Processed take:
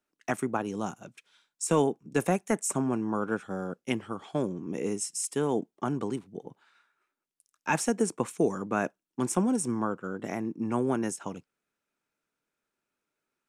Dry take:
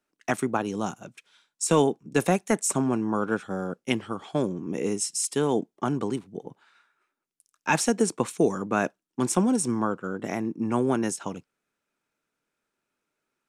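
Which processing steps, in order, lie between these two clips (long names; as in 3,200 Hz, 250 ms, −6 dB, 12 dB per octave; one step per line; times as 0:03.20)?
dynamic equaliser 4,100 Hz, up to −7 dB, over −49 dBFS, Q 1.6
level −3.5 dB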